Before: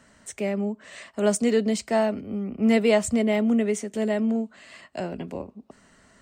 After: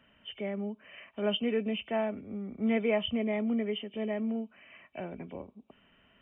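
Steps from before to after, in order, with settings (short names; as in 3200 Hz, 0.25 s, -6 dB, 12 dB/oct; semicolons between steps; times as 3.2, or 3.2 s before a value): nonlinear frequency compression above 2200 Hz 4:1; 2.93–4.35 notch 1500 Hz, Q 9.9; gain -8.5 dB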